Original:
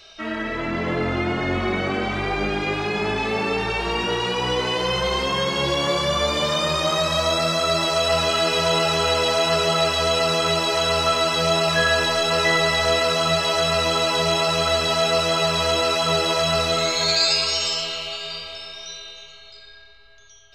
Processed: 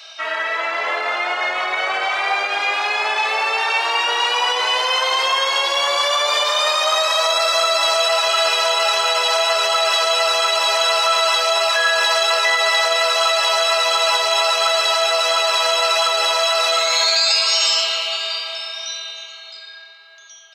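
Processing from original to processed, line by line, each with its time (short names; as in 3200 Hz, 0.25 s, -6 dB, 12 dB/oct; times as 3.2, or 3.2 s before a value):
5.73–6.34 echo throw 0.34 s, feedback 25%, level -13.5 dB
whole clip: limiter -14.5 dBFS; HPF 660 Hz 24 dB/oct; gain +8 dB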